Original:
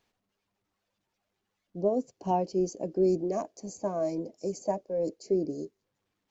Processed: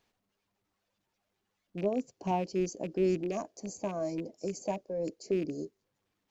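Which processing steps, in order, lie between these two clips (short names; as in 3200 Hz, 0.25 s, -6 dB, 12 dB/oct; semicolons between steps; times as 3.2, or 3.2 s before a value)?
rattling part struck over -36 dBFS, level -37 dBFS; dynamic EQ 560 Hz, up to -5 dB, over -36 dBFS, Q 0.76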